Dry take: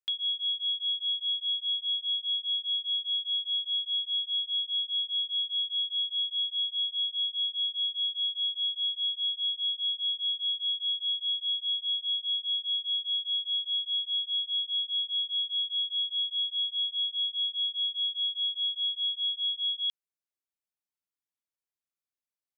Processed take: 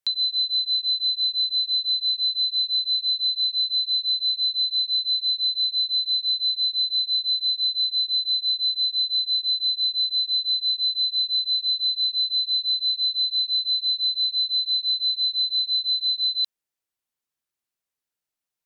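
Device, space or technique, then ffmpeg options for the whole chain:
nightcore: -af "asetrate=53361,aresample=44100,volume=7dB"

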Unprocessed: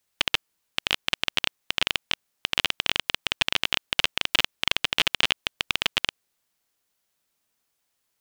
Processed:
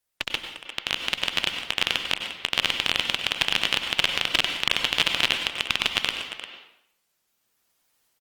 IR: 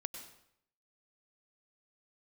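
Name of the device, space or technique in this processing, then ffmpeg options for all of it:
speakerphone in a meeting room: -filter_complex "[1:a]atrim=start_sample=2205[link_01];[0:a][link_01]afir=irnorm=-1:irlink=0,asplit=2[link_02][link_03];[link_03]adelay=350,highpass=300,lowpass=3400,asoftclip=type=hard:threshold=-14dB,volume=-8dB[link_04];[link_02][link_04]amix=inputs=2:normalize=0,dynaudnorm=framelen=730:gausssize=3:maxgain=10.5dB,volume=-1dB" -ar 48000 -c:a libopus -b:a 24k

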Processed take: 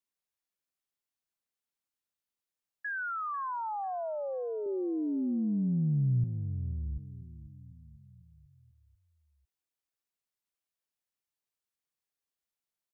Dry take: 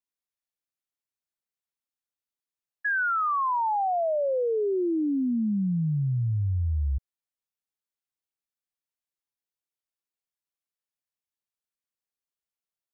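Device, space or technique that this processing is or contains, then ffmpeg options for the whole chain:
stacked limiters: -filter_complex "[0:a]alimiter=level_in=3.5dB:limit=-24dB:level=0:latency=1:release=29,volume=-3.5dB,alimiter=level_in=8dB:limit=-24dB:level=0:latency=1,volume=-8dB,asettb=1/sr,asplit=3[link_01][link_02][link_03];[link_01]atrim=end=4.664[link_04];[link_02]atrim=start=4.66:end=6.24,asetpts=PTS-STARTPTS,afade=type=in:duration=0.004:curve=qsin,afade=type=out:start_time=1.576:duration=0.004:curve=qsin,aemphasis=mode=reproduction:type=bsi[link_05];[link_03]atrim=start=6.236[link_06];[link_04][link_05]acrossfade=duration=0.004:curve1=hsin:curve2=qsin[link_07];[link_07][link_06]acrossfade=duration=0.004:curve1=qsin:curve2=hsin,asplit=2[link_08][link_09];[link_09]adelay=494,lowpass=frequency=950:poles=1,volume=-14.5dB,asplit=2[link_10][link_11];[link_11]adelay=494,lowpass=frequency=950:poles=1,volume=0.53,asplit=2[link_12][link_13];[link_13]adelay=494,lowpass=frequency=950:poles=1,volume=0.53,asplit=2[link_14][link_15];[link_15]adelay=494,lowpass=frequency=950:poles=1,volume=0.53,asplit=2[link_16][link_17];[link_17]adelay=494,lowpass=frequency=950:poles=1,volume=0.53[link_18];[link_08][link_10][link_12][link_14][link_16][link_18]amix=inputs=6:normalize=0"

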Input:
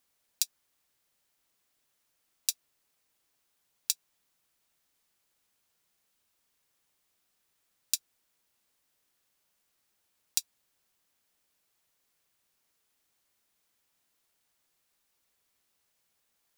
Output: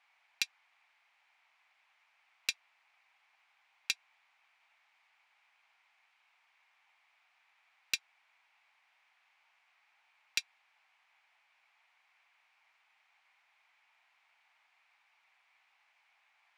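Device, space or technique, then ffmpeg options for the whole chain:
megaphone: -af "highpass=490,lowpass=2800,lowshelf=frequency=610:width_type=q:width=3:gain=-9,equalizer=frequency=2300:width_type=o:width=0.55:gain=11.5,asoftclip=type=hard:threshold=-25.5dB,volume=7.5dB"

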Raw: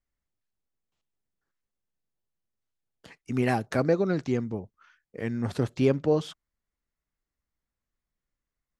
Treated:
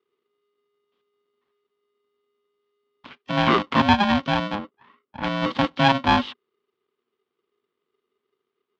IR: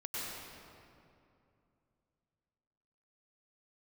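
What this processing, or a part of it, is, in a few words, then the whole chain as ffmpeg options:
ring modulator pedal into a guitar cabinet: -filter_complex "[0:a]aeval=exprs='val(0)*sgn(sin(2*PI*410*n/s))':channel_layout=same,highpass=100,equalizer=frequency=240:width_type=q:width=4:gain=8,equalizer=frequency=390:width_type=q:width=4:gain=5,equalizer=frequency=620:width_type=q:width=4:gain=-5,equalizer=frequency=1100:width_type=q:width=4:gain=7,equalizer=frequency=3200:width_type=q:width=4:gain=6,lowpass=frequency=4200:width=0.5412,lowpass=frequency=4200:width=1.3066,asettb=1/sr,asplit=3[link_01][link_02][link_03];[link_01]atrim=end=4.554[link_04];[link_02]atrim=start=4.55:end=5.23,asetpts=PTS-STARTPTS,afade=type=in:duration=0.004:curve=qsin,afade=type=out:start_time=0.676:duration=0.004:curve=qsin,lowpass=frequency=1500:poles=1[link_05];[link_03]atrim=start=5.226[link_06];[link_04][link_05]acrossfade=duration=0.004:curve1=hsin:curve2=qsin[link_07];[link_07][link_06]acrossfade=duration=0.004:curve1=qsin:curve2=hsin,volume=4.5dB"

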